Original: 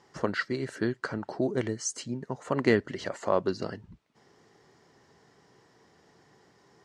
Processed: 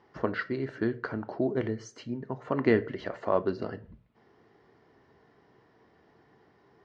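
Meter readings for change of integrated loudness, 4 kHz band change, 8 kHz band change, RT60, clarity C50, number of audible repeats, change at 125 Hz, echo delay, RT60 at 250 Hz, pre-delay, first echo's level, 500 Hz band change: −0.5 dB, −7.5 dB, below −15 dB, 0.45 s, 19.0 dB, no echo audible, −0.5 dB, no echo audible, 0.55 s, 3 ms, no echo audible, 0.0 dB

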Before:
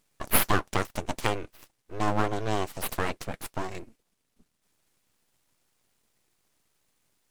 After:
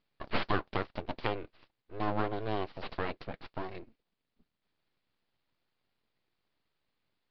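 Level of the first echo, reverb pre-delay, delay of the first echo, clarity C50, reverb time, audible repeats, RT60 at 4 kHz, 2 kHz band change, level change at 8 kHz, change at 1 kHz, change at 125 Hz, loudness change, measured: no echo audible, no reverb audible, no echo audible, no reverb audible, no reverb audible, no echo audible, no reverb audible, −6.5 dB, below −40 dB, −6.0 dB, −6.5 dB, −7.0 dB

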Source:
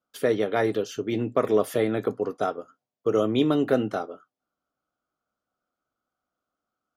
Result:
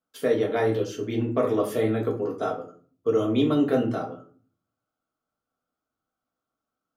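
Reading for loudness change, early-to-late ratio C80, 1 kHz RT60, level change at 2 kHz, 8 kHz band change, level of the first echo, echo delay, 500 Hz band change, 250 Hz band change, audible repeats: 0.0 dB, 15.0 dB, 0.35 s, −2.0 dB, can't be measured, no echo audible, no echo audible, 0.0 dB, +1.0 dB, no echo audible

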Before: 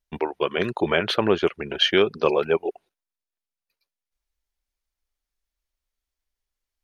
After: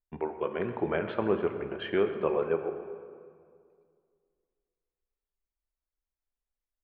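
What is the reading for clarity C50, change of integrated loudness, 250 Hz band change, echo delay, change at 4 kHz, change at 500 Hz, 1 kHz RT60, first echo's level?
8.0 dB, −8.5 dB, −6.5 dB, 128 ms, −22.0 dB, −6.5 dB, 2.1 s, −16.5 dB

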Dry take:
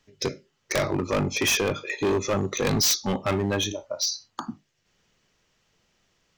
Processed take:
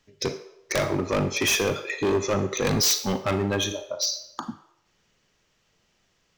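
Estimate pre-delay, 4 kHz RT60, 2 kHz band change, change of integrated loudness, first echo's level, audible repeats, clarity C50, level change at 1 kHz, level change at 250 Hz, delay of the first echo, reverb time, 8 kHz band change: 34 ms, 0.60 s, +0.5 dB, +0.5 dB, no echo audible, no echo audible, 11.0 dB, +0.5 dB, 0.0 dB, no echo audible, 0.80 s, +0.5 dB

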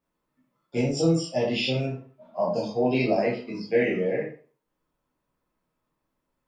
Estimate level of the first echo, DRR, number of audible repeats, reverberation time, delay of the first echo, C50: no echo audible, −6.0 dB, no echo audible, 0.40 s, no echo audible, 5.0 dB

